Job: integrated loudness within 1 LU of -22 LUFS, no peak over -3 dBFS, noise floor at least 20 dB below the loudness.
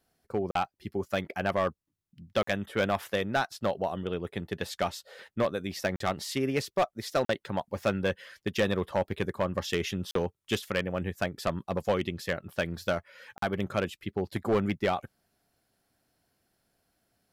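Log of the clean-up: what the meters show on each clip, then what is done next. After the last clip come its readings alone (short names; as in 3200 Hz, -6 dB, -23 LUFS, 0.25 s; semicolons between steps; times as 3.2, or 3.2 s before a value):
clipped 0.8%; flat tops at -19.5 dBFS; dropouts 6; longest dropout 43 ms; loudness -31.5 LUFS; peak -19.5 dBFS; loudness target -22.0 LUFS
-> clip repair -19.5 dBFS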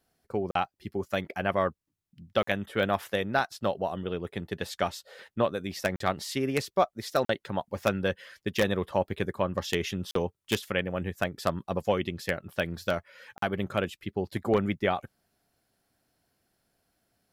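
clipped 0.0%; dropouts 6; longest dropout 43 ms
-> interpolate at 0.51/2.43/5.96/7.25/10.11/13.38, 43 ms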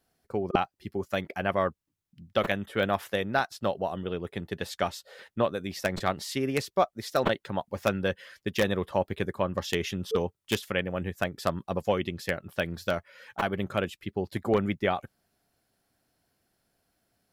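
dropouts 0; loudness -30.5 LUFS; peak -6.5 dBFS; loudness target -22.0 LUFS
-> gain +8.5 dB; limiter -3 dBFS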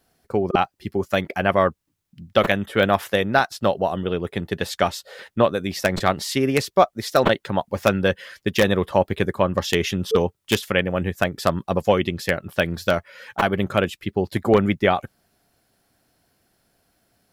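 loudness -22.0 LUFS; peak -3.0 dBFS; noise floor -73 dBFS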